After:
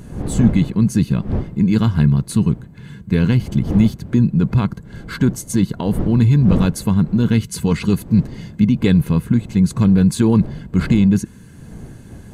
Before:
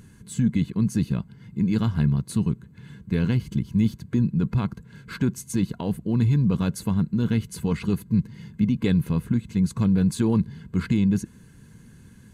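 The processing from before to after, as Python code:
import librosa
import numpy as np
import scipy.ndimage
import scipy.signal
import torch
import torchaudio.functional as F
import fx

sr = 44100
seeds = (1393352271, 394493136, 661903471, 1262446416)

y = fx.dmg_wind(x, sr, seeds[0], corner_hz=200.0, level_db=-36.0)
y = fx.notch(y, sr, hz=2500.0, q=11.0, at=(4.66, 6.03))
y = fx.peak_eq(y, sr, hz=5800.0, db=4.0, octaves=1.7, at=(7.34, 8.65))
y = y * 10.0 ** (7.5 / 20.0)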